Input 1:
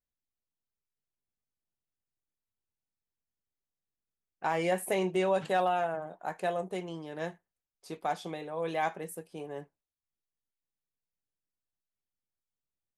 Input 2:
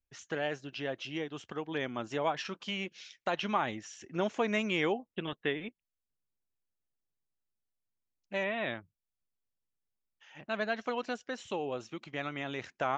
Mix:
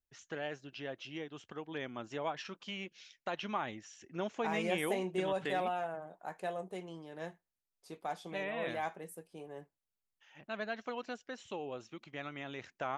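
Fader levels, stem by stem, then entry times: −7.0, −6.0 decibels; 0.00, 0.00 seconds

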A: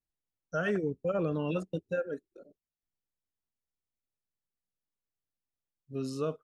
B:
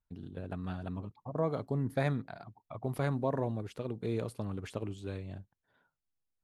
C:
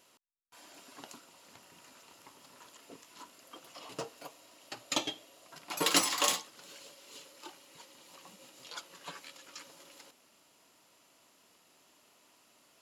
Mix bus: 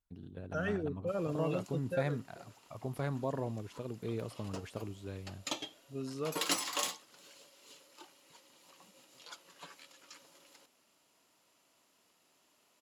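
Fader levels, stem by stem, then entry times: −5.0, −4.0, −6.0 decibels; 0.00, 0.00, 0.55 seconds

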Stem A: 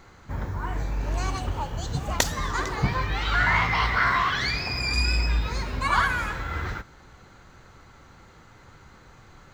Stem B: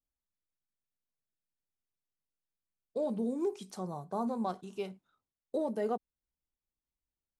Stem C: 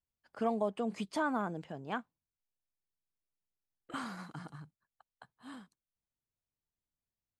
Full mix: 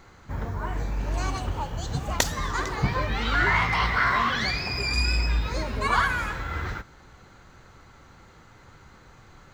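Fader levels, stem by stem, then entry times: −0.5, −3.0, −10.5 decibels; 0.00, 0.00, 0.00 seconds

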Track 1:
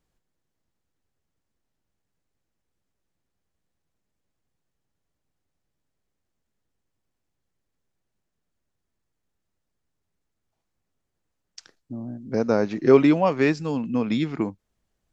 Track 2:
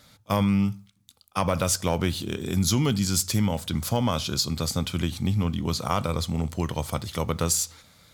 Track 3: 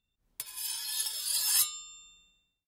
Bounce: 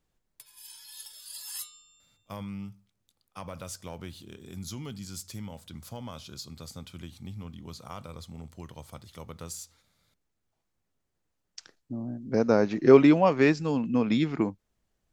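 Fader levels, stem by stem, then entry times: −1.0, −16.0, −12.0 decibels; 0.00, 2.00, 0.00 seconds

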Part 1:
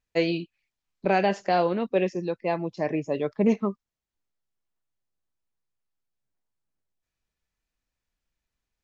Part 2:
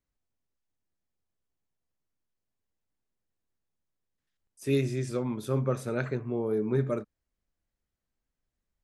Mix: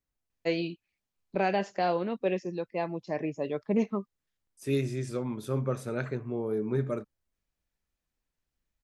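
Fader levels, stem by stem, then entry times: −5.0, −2.0 decibels; 0.30, 0.00 seconds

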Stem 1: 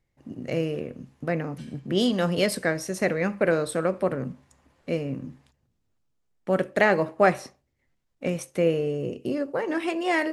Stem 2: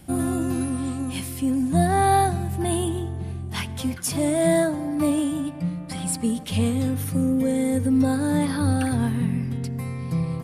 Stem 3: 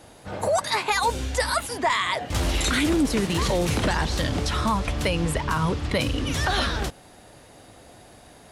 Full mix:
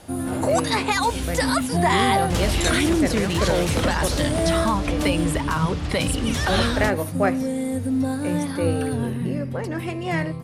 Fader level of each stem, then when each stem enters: −2.5, −3.0, +1.0 decibels; 0.00, 0.00, 0.00 seconds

